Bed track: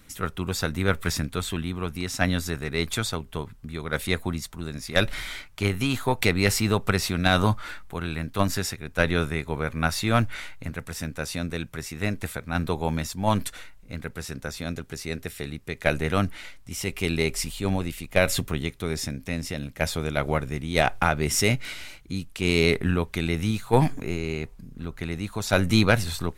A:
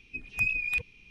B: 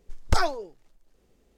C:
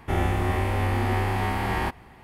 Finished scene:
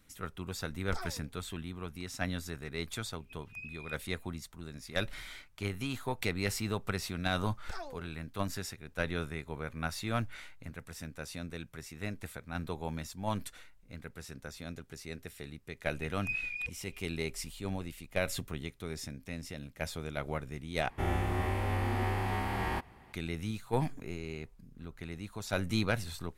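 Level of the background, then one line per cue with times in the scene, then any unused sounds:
bed track -11.5 dB
0.60 s: add B -18 dB
3.16 s: add A -18 dB
7.37 s: add B -11.5 dB + compression 2.5:1, threshold -27 dBFS
15.88 s: add A -7 dB + peak limiter -19 dBFS
20.90 s: replace with C -7.5 dB

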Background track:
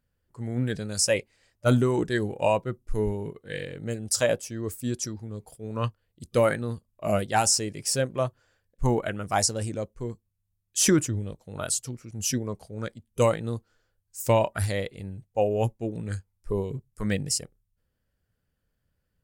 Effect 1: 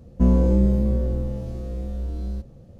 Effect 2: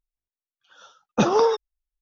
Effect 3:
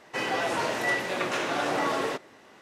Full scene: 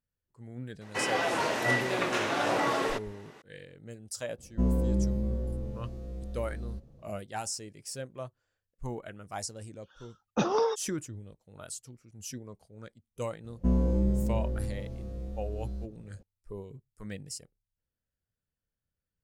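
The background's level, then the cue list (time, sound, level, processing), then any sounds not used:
background track -13.5 dB
0.81 s: add 3 -1 dB
4.38 s: add 1 -9.5 dB
9.19 s: add 2 -8 dB
13.44 s: add 1 -8.5 dB

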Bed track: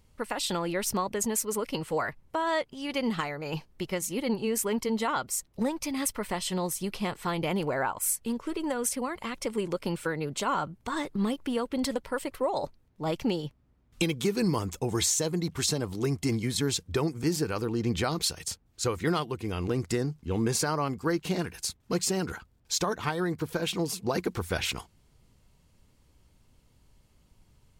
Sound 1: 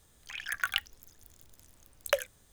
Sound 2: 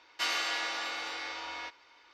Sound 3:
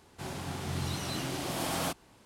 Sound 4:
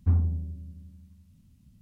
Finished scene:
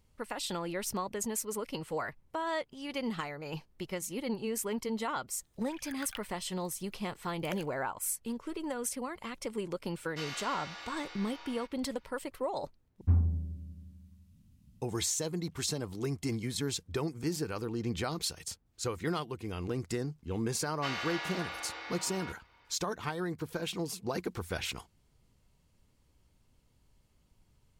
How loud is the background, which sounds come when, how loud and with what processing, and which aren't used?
bed track -6 dB
5.39 s: add 1 -14 dB
9.97 s: add 2 -10 dB
13.01 s: replace with 4 -3 dB
20.63 s: add 2 -2.5 dB + treble shelf 3.9 kHz -11.5 dB
not used: 3

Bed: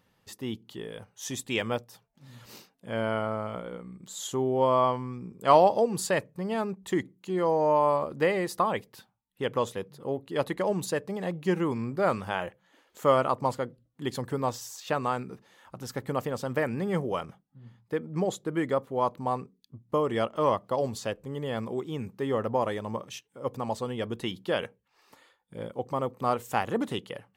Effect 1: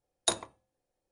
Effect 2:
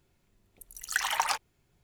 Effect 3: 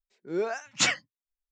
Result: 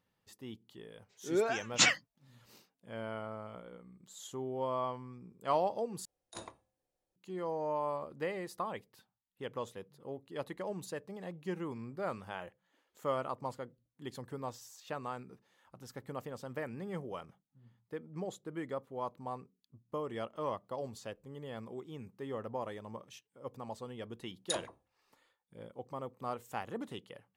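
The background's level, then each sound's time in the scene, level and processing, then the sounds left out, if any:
bed -12 dB
0.99 s: add 3 -1.5 dB
6.05 s: replace with 1 -10.5 dB + compressor with a negative ratio -36 dBFS
24.22 s: add 1 -7.5 dB + phase dispersion lows, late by 54 ms, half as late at 1.3 kHz
not used: 2

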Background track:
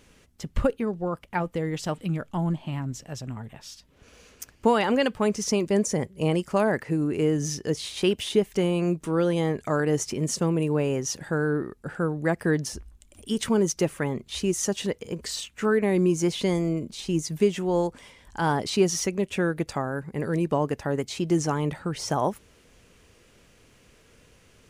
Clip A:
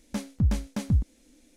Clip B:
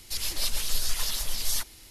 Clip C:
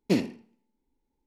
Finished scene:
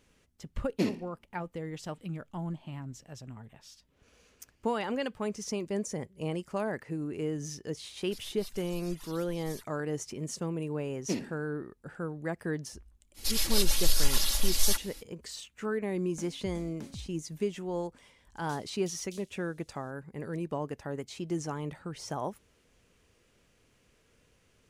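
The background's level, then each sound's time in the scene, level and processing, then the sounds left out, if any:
background track -10 dB
0.69 s: add C -5 dB
8.01 s: add B -17.5 dB + reverb removal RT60 2 s
10.99 s: add C -8.5 dB
13.14 s: add B -0.5 dB, fades 0.05 s + comb 3.6 ms, depth 64%
16.04 s: add A -9.5 dB + compression 4:1, threshold -33 dBFS
18.35 s: add A -6.5 dB + steep high-pass 3 kHz

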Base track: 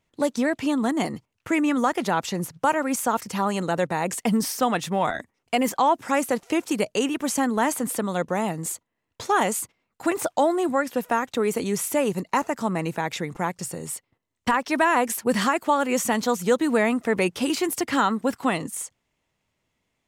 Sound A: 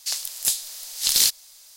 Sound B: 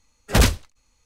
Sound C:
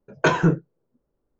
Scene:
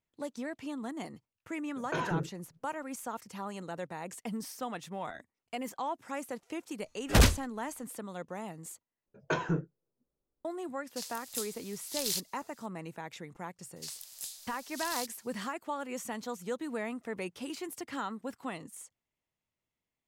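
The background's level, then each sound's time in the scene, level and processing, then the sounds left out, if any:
base track -15.5 dB
1.68 s: add C -7 dB + peak limiter -17 dBFS
6.80 s: add B -5.5 dB
9.06 s: replace with C -12.5 dB
10.90 s: add A -15 dB
13.76 s: add A -15 dB + compression 2:1, threshold -23 dBFS

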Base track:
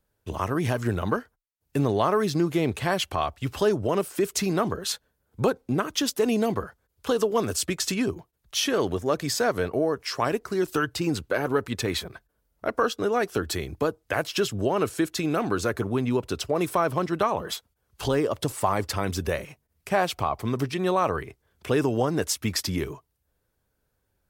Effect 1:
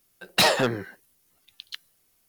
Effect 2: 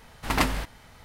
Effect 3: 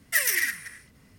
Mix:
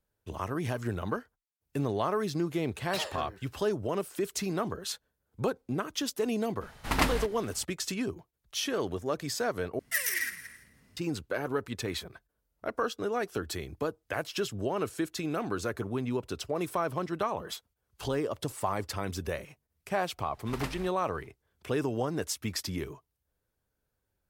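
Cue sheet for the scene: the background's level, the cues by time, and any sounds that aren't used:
base track -7 dB
2.55 s: add 1 -17.5 dB
6.61 s: add 2 -2.5 dB
9.79 s: replace with 3 -6.5 dB + feedback delay 167 ms, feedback 30%, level -16.5 dB
20.23 s: add 2 -14 dB

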